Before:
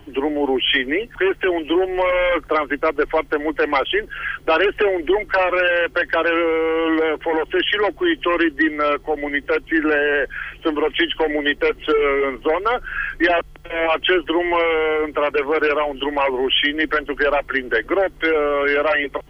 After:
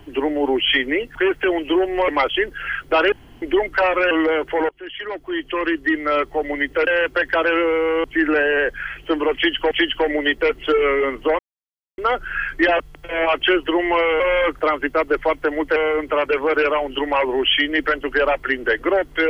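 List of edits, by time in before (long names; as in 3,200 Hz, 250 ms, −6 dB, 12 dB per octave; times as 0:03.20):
0:02.08–0:03.64: move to 0:14.81
0:04.68–0:04.98: fill with room tone
0:05.67–0:06.84: move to 0:09.60
0:07.42–0:08.94: fade in, from −23 dB
0:10.91–0:11.27: repeat, 2 plays
0:12.59: splice in silence 0.59 s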